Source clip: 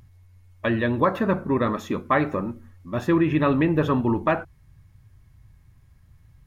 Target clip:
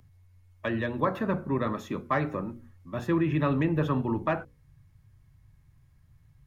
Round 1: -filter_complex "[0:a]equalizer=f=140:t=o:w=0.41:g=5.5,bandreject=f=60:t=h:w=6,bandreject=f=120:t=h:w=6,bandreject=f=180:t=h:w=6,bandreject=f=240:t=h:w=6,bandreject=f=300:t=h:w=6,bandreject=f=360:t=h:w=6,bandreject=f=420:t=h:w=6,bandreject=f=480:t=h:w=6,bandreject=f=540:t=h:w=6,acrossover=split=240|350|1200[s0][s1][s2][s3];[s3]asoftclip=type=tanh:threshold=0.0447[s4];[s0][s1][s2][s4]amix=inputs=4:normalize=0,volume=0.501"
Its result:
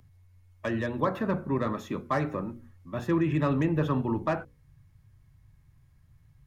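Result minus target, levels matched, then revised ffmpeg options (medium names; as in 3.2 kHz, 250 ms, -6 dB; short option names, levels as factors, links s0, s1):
saturation: distortion +15 dB
-filter_complex "[0:a]equalizer=f=140:t=o:w=0.41:g=5.5,bandreject=f=60:t=h:w=6,bandreject=f=120:t=h:w=6,bandreject=f=180:t=h:w=6,bandreject=f=240:t=h:w=6,bandreject=f=300:t=h:w=6,bandreject=f=360:t=h:w=6,bandreject=f=420:t=h:w=6,bandreject=f=480:t=h:w=6,bandreject=f=540:t=h:w=6,acrossover=split=240|350|1200[s0][s1][s2][s3];[s3]asoftclip=type=tanh:threshold=0.158[s4];[s0][s1][s2][s4]amix=inputs=4:normalize=0,volume=0.501"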